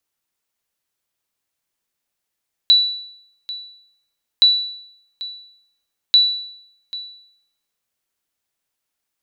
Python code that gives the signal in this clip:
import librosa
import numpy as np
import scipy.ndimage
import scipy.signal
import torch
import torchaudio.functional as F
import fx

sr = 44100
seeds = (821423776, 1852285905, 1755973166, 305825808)

y = fx.sonar_ping(sr, hz=3950.0, decay_s=0.72, every_s=1.72, pings=3, echo_s=0.79, echo_db=-17.5, level_db=-5.5)